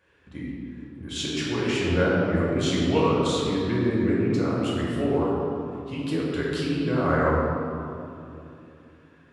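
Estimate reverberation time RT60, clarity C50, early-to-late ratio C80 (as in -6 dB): 2.8 s, -2.0 dB, 0.0 dB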